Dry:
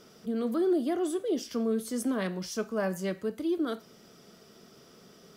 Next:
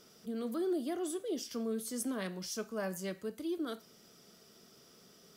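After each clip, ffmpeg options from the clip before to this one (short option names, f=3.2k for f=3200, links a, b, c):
-af "highshelf=f=3.6k:g=8.5,volume=-7.5dB"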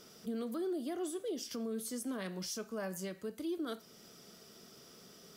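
-af "alimiter=level_in=10.5dB:limit=-24dB:level=0:latency=1:release=287,volume=-10.5dB,volume=3.5dB"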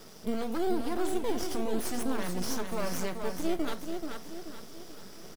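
-filter_complex "[0:a]aeval=exprs='max(val(0),0)':c=same,aecho=1:1:432|864|1296|1728|2160:0.501|0.226|0.101|0.0457|0.0206,asplit=2[a][b];[b]acrusher=samples=13:mix=1:aa=0.000001:lfo=1:lforange=7.8:lforate=0.89,volume=-6dB[c];[a][c]amix=inputs=2:normalize=0,volume=8dB"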